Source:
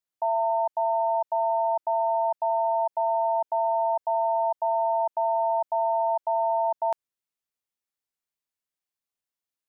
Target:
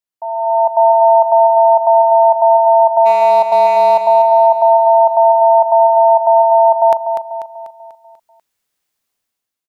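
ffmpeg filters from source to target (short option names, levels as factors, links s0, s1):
-filter_complex "[0:a]dynaudnorm=f=120:g=9:m=6.31,asplit=3[s0][s1][s2];[s0]afade=t=out:st=3.05:d=0.02[s3];[s1]asoftclip=type=hard:threshold=0.501,afade=t=in:st=3.05:d=0.02,afade=t=out:st=4.05:d=0.02[s4];[s2]afade=t=in:st=4.05:d=0.02[s5];[s3][s4][s5]amix=inputs=3:normalize=0,aecho=1:1:245|490|735|980|1225|1470:0.422|0.202|0.0972|0.0466|0.0224|0.0107"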